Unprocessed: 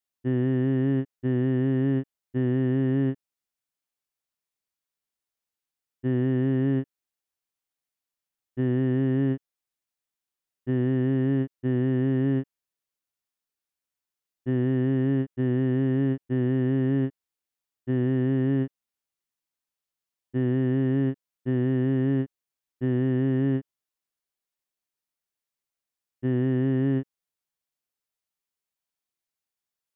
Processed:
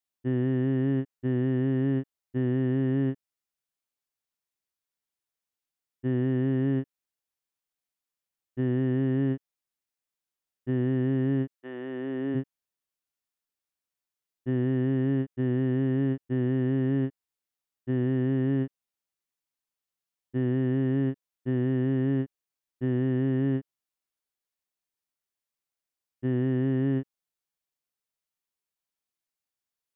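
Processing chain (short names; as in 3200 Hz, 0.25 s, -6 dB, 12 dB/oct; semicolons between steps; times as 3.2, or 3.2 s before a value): 11.55–12.34 HPF 700 Hz -> 250 Hz 12 dB/oct; gain -2 dB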